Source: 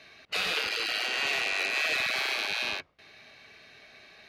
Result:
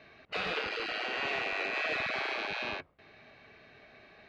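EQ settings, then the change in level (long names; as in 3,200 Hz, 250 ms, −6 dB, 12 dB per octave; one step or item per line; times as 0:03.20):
bass and treble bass 0 dB, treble +5 dB
head-to-tape spacing loss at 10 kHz 27 dB
high-shelf EQ 3,800 Hz −9 dB
+3.0 dB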